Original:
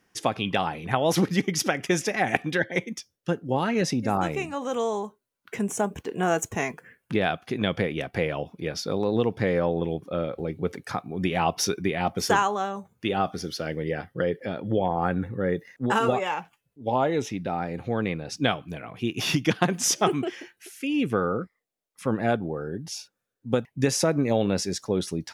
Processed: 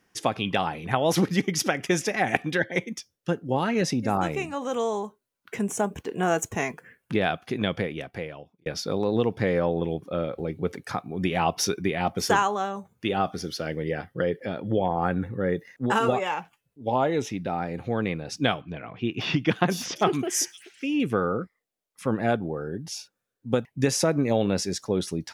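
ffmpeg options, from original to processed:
-filter_complex "[0:a]asettb=1/sr,asplit=3[a][b][c];[a]atrim=end=18.614[d];[b]atrim=start=18.61:end=21,asetpts=PTS-STARTPTS,afade=t=in:d=0.004:c=qsin,afade=t=out:st=2.386:d=0.004:c=qsin,acrossover=split=4500[e][f];[f]adelay=510[g];[e][g]amix=inputs=2:normalize=0,atrim=end_sample=105399[h];[c]atrim=start=20.996[i];[d][h]acrossfade=d=0.004:c1=hsin:c2=qsin[j];[j][i]acrossfade=d=0.004:c1=qsin:c2=hsin,asplit=2[k][l];[k]atrim=end=8.66,asetpts=PTS-STARTPTS,afade=t=out:st=7.56:d=1.1[m];[l]atrim=start=8.66,asetpts=PTS-STARTPTS,afade=t=in:d=0.004:c=hsin[n];[m][n]concat=n=2:v=0:a=1"

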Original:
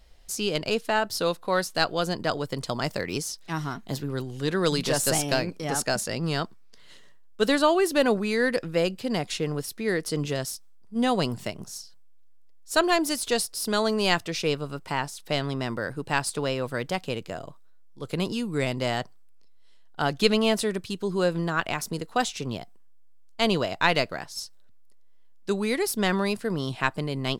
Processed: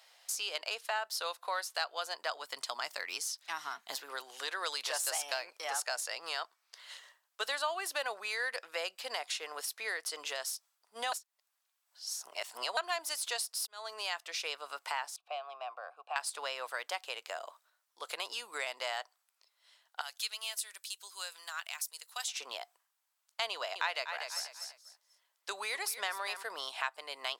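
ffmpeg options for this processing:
-filter_complex "[0:a]asplit=3[a][b][c];[a]afade=t=out:st=2.4:d=0.02[d];[b]asubboost=boost=7.5:cutoff=210,afade=t=in:st=2.4:d=0.02,afade=t=out:st=3.95:d=0.02[e];[c]afade=t=in:st=3.95:d=0.02[f];[d][e][f]amix=inputs=3:normalize=0,asettb=1/sr,asplit=3[g][h][i];[g]atrim=end=15.164[j];[h]atrim=start=15.16:end=16.16,asetpts=PTS-STARTPTS,afade=t=in:d=0.004:c=qsin,afade=t=out:st=0.996:d=0.004:c=qsin,asplit=3[k][l][m];[k]bandpass=f=730:t=q:w=8,volume=0dB[n];[l]bandpass=f=1.09k:t=q:w=8,volume=-6dB[o];[m]bandpass=f=2.44k:t=q:w=8,volume=-9dB[p];[n][o][p]amix=inputs=3:normalize=0[q];[i]atrim=start=16.156[r];[j][q]acrossfade=d=0.004:c1=hsin:c2=qsin[s];[s][r]acrossfade=d=0.004:c1=qsin:c2=hsin,asettb=1/sr,asplit=3[t][u][v];[t]atrim=end=20.014[w];[u]atrim=start=20.01:end=22.28,asetpts=PTS-STARTPTS,afade=t=in:d=0.004:c=qsin,afade=t=out:st=2.266:d=0.004:c=qsin,aderivative[x];[v]atrim=start=22.276[y];[w][x]acrossfade=d=0.004:c1=hsin:c2=qsin[z];[z][y]acrossfade=d=0.004:c1=qsin:c2=hsin,asettb=1/sr,asplit=3[aa][ab][ac];[aa]atrim=end=23.514[ad];[ab]atrim=start=23.51:end=26.43,asetpts=PTS-STARTPTS,afade=t=in:d=0.004:c=qsin,afade=t=out:st=2.916:d=0.004:c=qsin,aecho=1:1:244|488|732:0.266|0.0559|0.0117,atrim=end_sample=128772[ae];[ac]atrim=start=26.426[af];[ad][ae]acrossfade=d=0.004:c1=hsin:c2=qsin[ag];[ag][af]acrossfade=d=0.004:c1=qsin:c2=hsin,asplit=4[ah][ai][aj][ak];[ah]atrim=end=11.122[al];[ai]atrim=start=11.118:end=12.772,asetpts=PTS-STARTPTS,areverse[am];[aj]atrim=start=12.768:end=13.67,asetpts=PTS-STARTPTS,afade=t=out:st=0.898:d=0.004:c=hsin[an];[ak]atrim=start=13.67,asetpts=PTS-STARTPTS,afade=t=in:d=0.93[ao];[al][am]acrossfade=d=0.004:c1=hsin:c2=hsin[ap];[an][ao]concat=n=2:v=0:a=1[aq];[ap][aq]acrossfade=d=0.004:c1=hsin:c2=hsin,highpass=f=710:w=0.5412,highpass=f=710:w=1.3066,acompressor=threshold=-42dB:ratio=2.5,volume=4dB"

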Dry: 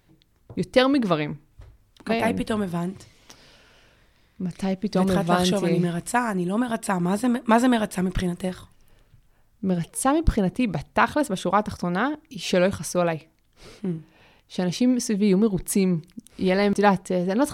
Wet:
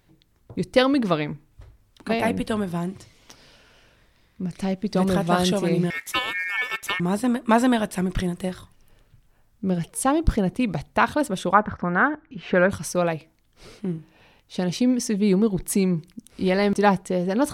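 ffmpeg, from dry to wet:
-filter_complex "[0:a]asettb=1/sr,asplit=3[a][b][c];[a]atrim=end=5.904[d];[b]atrim=start=5.9:end=7,asetpts=PTS-STARTPTS,afade=t=in:d=0.004:c=qsin,afade=t=out:st=1.096:d=0.004:c=qsin,aeval=exprs='val(0)*sin(2*PI*2000*n/s)':c=same[e];[c]atrim=start=6.996[f];[d][e]acrossfade=d=0.004:c1=hsin:c2=qsin[g];[g][f]acrossfade=d=0.004:c1=qsin:c2=hsin,asettb=1/sr,asplit=3[h][i][j];[h]atrim=end=11.544[k];[i]atrim=start=11.54:end=12.7,asetpts=PTS-STARTPTS,afade=t=in:d=0.004:c=qsin,afade=t=out:st=1.156:d=0.004:c=qsin,lowpass=f=1.6k:t=q:w=2.6[l];[j]atrim=start=12.696[m];[k][l]acrossfade=d=0.004:c1=hsin:c2=qsin[n];[n][m]acrossfade=d=0.004:c1=qsin:c2=hsin"

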